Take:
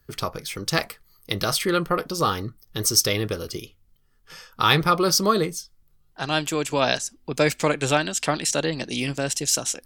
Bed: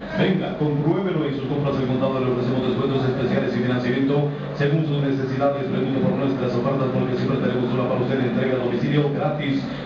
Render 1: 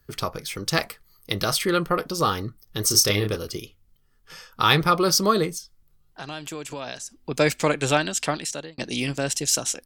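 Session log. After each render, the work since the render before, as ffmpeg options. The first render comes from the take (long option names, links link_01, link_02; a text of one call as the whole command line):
ffmpeg -i in.wav -filter_complex "[0:a]asplit=3[link_01][link_02][link_03];[link_01]afade=type=out:start_time=2.89:duration=0.02[link_04];[link_02]asplit=2[link_05][link_06];[link_06]adelay=29,volume=-5dB[link_07];[link_05][link_07]amix=inputs=2:normalize=0,afade=type=in:start_time=2.89:duration=0.02,afade=type=out:start_time=3.35:duration=0.02[link_08];[link_03]afade=type=in:start_time=3.35:duration=0.02[link_09];[link_04][link_08][link_09]amix=inputs=3:normalize=0,asettb=1/sr,asplit=3[link_10][link_11][link_12];[link_10]atrim=end=5.584[link_13];[link_11]atrim=start=5.58:end=7.15,asetpts=PTS-STARTPTS,afade=type=in:duration=0.004:curve=qsin,afade=type=out:start_time=1.566:duration=0.004:curve=qsin,acompressor=threshold=-33dB:ratio=3:attack=3.2:release=140:knee=1:detection=peak[link_14];[link_12]atrim=start=7.146[link_15];[link_13][link_14]acrossfade=duration=0.004:curve1=hsin:curve2=qsin[link_16];[link_16][link_15]acrossfade=duration=0.004:curve1=qsin:curve2=hsin,asplit=2[link_17][link_18];[link_17]atrim=end=8.78,asetpts=PTS-STARTPTS,afade=type=out:start_time=8.18:duration=0.6[link_19];[link_18]atrim=start=8.78,asetpts=PTS-STARTPTS,afade=type=in:duration=0.004:curve=hsin[link_20];[link_19][link_20]concat=n=2:v=0:a=1" out.wav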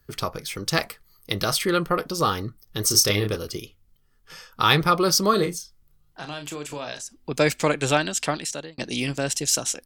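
ffmpeg -i in.wav -filter_complex "[0:a]asettb=1/sr,asplit=3[link_01][link_02][link_03];[link_01]atrim=end=5.304[link_04];[link_02]atrim=start=5.3:end=7.01,asetpts=PTS-STARTPTS,afade=type=in:duration=0.004:curve=qsin,afade=type=out:start_time=1.706:duration=0.004:curve=qsin,asplit=2[link_05][link_06];[link_06]adelay=34,volume=-8dB[link_07];[link_05][link_07]amix=inputs=2:normalize=0,atrim=end_sample=75411[link_08];[link_03]atrim=start=7.006[link_09];[link_04][link_08]acrossfade=duration=0.004:curve1=hsin:curve2=qsin[link_10];[link_10][link_09]acrossfade=duration=0.004:curve1=qsin:curve2=hsin" out.wav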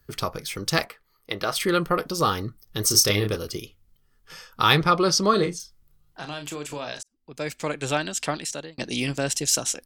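ffmpeg -i in.wav -filter_complex "[0:a]asplit=3[link_01][link_02][link_03];[link_01]afade=type=out:start_time=0.84:duration=0.02[link_04];[link_02]bass=frequency=250:gain=-11,treble=frequency=4000:gain=-12,afade=type=in:start_time=0.84:duration=0.02,afade=type=out:start_time=1.55:duration=0.02[link_05];[link_03]afade=type=in:start_time=1.55:duration=0.02[link_06];[link_04][link_05][link_06]amix=inputs=3:normalize=0,asettb=1/sr,asplit=3[link_07][link_08][link_09];[link_07]atrim=end=4.784[link_10];[link_08]atrim=start=4.78:end=5.6,asetpts=PTS-STARTPTS,afade=type=in:duration=0.004:curve=qsin,afade=type=out:start_time=0.816:duration=0.004:curve=qsin,lowpass=6900[link_11];[link_09]atrim=start=5.596[link_12];[link_10][link_11]acrossfade=duration=0.004:curve1=hsin:curve2=qsin[link_13];[link_13][link_12]acrossfade=duration=0.004:curve1=qsin:curve2=hsin,asplit=2[link_14][link_15];[link_14]atrim=end=7.03,asetpts=PTS-STARTPTS,afade=type=out:start_time=7.026:duration=0.004:curve=hsin[link_16];[link_15]atrim=start=7.03,asetpts=PTS-STARTPTS,afade=type=in:duration=2.13:curve=qsin[link_17];[link_16][link_17]concat=n=2:v=0:a=1" out.wav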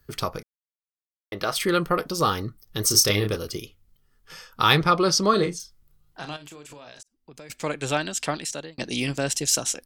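ffmpeg -i in.wav -filter_complex "[0:a]asettb=1/sr,asplit=3[link_01][link_02][link_03];[link_01]atrim=end=6.364[link_04];[link_02]atrim=start=6.36:end=7.5,asetpts=PTS-STARTPTS,afade=type=in:duration=0.004:curve=qsin,afade=type=out:start_time=1.136:duration=0.004:curve=qsin,acompressor=threshold=-41dB:ratio=5:attack=3.2:release=140:knee=1:detection=peak[link_05];[link_03]atrim=start=7.496[link_06];[link_04][link_05]acrossfade=duration=0.004:curve1=hsin:curve2=qsin[link_07];[link_07][link_06]acrossfade=duration=0.004:curve1=qsin:curve2=hsin,asplit=3[link_08][link_09][link_10];[link_08]atrim=end=0.43,asetpts=PTS-STARTPTS,afade=type=out:start_time=0.426:duration=0.004:curve=hsin[link_11];[link_09]atrim=start=0.43:end=1.32,asetpts=PTS-STARTPTS,volume=0[link_12];[link_10]atrim=start=1.32,asetpts=PTS-STARTPTS,afade=type=in:duration=0.004:curve=hsin[link_13];[link_11][link_12][link_13]concat=n=3:v=0:a=1" out.wav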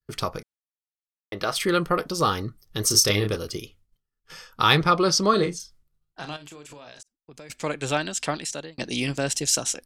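ffmpeg -i in.wav -af "agate=range=-33dB:threshold=-49dB:ratio=3:detection=peak,lowpass=12000" out.wav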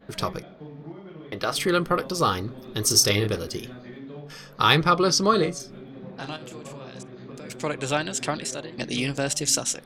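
ffmpeg -i in.wav -i bed.wav -filter_complex "[1:a]volume=-20dB[link_01];[0:a][link_01]amix=inputs=2:normalize=0" out.wav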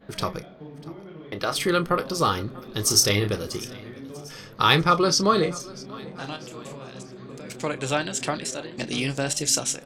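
ffmpeg -i in.wav -filter_complex "[0:a]asplit=2[link_01][link_02];[link_02]adelay=30,volume=-13.5dB[link_03];[link_01][link_03]amix=inputs=2:normalize=0,aecho=1:1:643|1286|1929:0.0891|0.0419|0.0197" out.wav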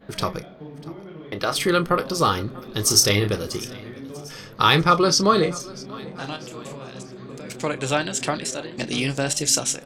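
ffmpeg -i in.wav -af "volume=2.5dB,alimiter=limit=-2dB:level=0:latency=1" out.wav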